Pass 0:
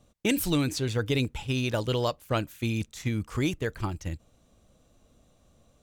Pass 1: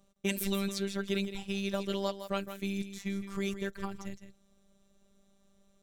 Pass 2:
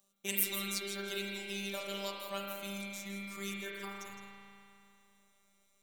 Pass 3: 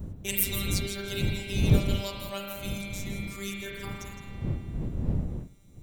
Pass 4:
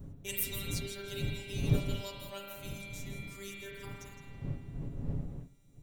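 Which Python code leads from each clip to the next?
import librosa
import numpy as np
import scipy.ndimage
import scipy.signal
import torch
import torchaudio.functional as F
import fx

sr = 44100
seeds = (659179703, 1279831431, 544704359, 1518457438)

y1 = fx.robotise(x, sr, hz=197.0)
y1 = y1 + 10.0 ** (-10.5 / 20.0) * np.pad(y1, (int(162 * sr / 1000.0), 0))[:len(y1)]
y1 = y1 * 10.0 ** (-3.5 / 20.0)
y2 = fx.riaa(y1, sr, side='recording')
y2 = fx.rev_spring(y2, sr, rt60_s=2.8, pass_ms=(35,), chirp_ms=75, drr_db=-3.5)
y2 = y2 * 10.0 ** (-8.0 / 20.0)
y3 = fx.dmg_wind(y2, sr, seeds[0], corner_hz=140.0, level_db=-36.0)
y3 = fx.peak_eq(y3, sr, hz=1200.0, db=-4.0, octaves=1.4)
y3 = y3 * 10.0 ** (5.0 / 20.0)
y4 = y3 + 0.51 * np.pad(y3, (int(7.2 * sr / 1000.0), 0))[:len(y3)]
y4 = y4 * 10.0 ** (-8.5 / 20.0)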